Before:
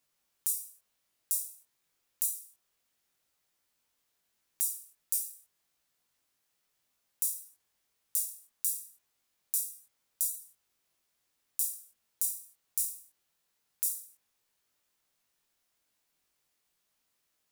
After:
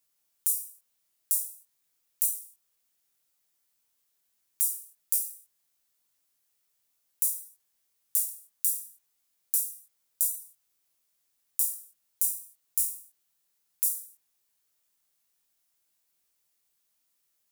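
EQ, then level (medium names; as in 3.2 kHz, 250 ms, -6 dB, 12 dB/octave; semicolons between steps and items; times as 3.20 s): treble shelf 5.8 kHz +10.5 dB; -4.5 dB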